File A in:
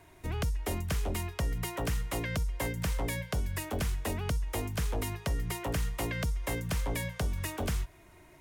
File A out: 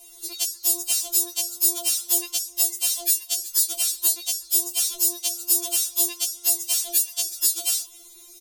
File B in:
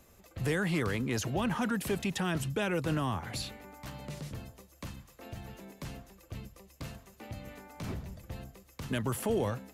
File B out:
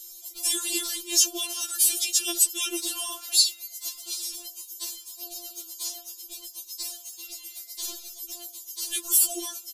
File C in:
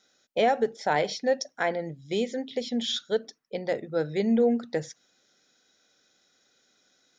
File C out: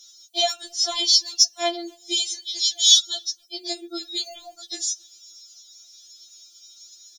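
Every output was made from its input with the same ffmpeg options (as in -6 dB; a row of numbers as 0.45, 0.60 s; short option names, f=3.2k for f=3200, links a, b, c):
-filter_complex "[0:a]asplit=2[a][b];[b]adelay=270,highpass=300,lowpass=3.4k,asoftclip=type=hard:threshold=-22.5dB,volume=-29dB[c];[a][c]amix=inputs=2:normalize=0,aexciter=amount=15:drive=7:freq=3.1k,afftfilt=real='re*4*eq(mod(b,16),0)':imag='im*4*eq(mod(b,16),0)':win_size=2048:overlap=0.75,volume=-3.5dB"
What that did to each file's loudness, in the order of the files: +13.0, +9.5, +7.5 LU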